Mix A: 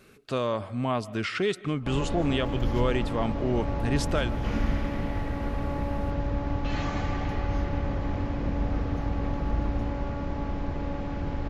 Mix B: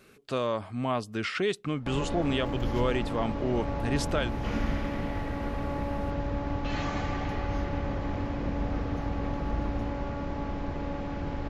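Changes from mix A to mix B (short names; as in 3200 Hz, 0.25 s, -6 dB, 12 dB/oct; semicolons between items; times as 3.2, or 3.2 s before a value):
speech: send off; master: add low shelf 150 Hz -4.5 dB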